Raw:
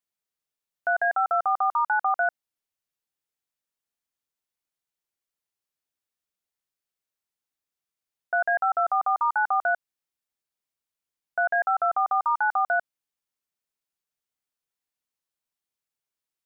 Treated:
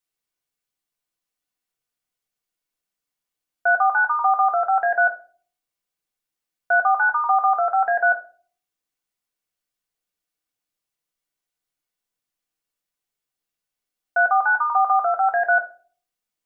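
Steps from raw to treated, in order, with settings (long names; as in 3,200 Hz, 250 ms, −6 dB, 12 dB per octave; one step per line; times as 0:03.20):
played backwards from end to start
hum removal 369 Hz, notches 2
convolution reverb RT60 0.40 s, pre-delay 3 ms, DRR 2 dB
level +1.5 dB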